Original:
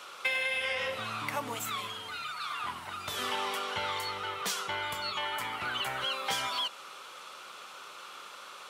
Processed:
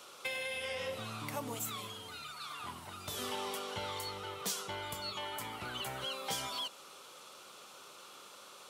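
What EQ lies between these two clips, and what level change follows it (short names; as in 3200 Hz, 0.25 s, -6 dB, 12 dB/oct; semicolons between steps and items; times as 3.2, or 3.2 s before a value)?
bell 1700 Hz -11.5 dB 2.5 oct; +1.0 dB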